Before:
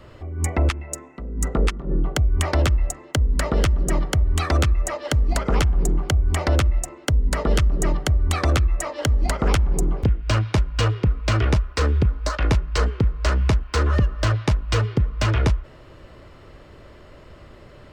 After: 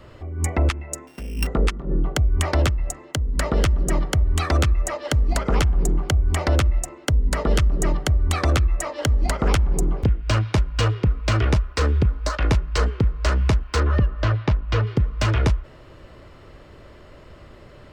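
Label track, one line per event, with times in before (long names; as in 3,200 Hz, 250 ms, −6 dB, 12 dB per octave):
1.070000	1.470000	samples sorted by size in blocks of 16 samples
2.690000	3.380000	downward compressor, threshold −19 dBFS
13.800000	14.870000	high-frequency loss of the air 170 metres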